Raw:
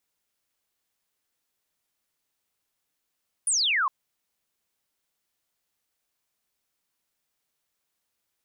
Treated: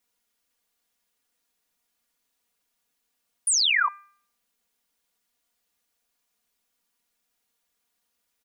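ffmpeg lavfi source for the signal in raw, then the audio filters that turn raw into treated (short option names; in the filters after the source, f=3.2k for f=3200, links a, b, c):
-f lavfi -i "aevalsrc='0.0891*clip(t/0.002,0,1)*clip((0.41-t)/0.002,0,1)*sin(2*PI*10000*0.41/log(1000/10000)*(exp(log(1000/10000)*t/0.41)-1))':d=0.41:s=44100"
-af "aecho=1:1:4.2:0.89,bandreject=f=398:t=h:w=4,bandreject=f=796:t=h:w=4,bandreject=f=1.194k:t=h:w=4,bandreject=f=1.592k:t=h:w=4,bandreject=f=1.99k:t=h:w=4,bandreject=f=2.388k:t=h:w=4"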